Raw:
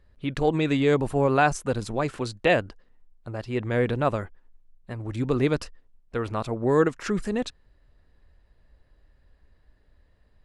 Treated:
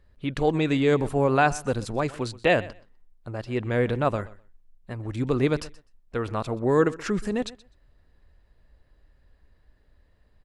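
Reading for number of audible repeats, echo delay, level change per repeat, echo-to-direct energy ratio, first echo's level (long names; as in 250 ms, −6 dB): 1, 126 ms, repeats not evenly spaced, −19.5 dB, −19.5 dB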